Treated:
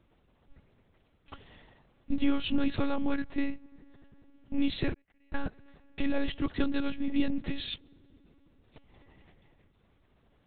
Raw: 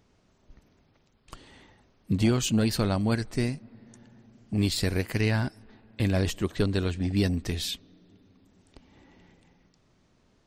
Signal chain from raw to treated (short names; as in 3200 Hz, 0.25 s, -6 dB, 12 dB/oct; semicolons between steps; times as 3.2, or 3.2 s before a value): 4.92–5.34 flipped gate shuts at -23 dBFS, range -38 dB; monotone LPC vocoder at 8 kHz 280 Hz; gain -1.5 dB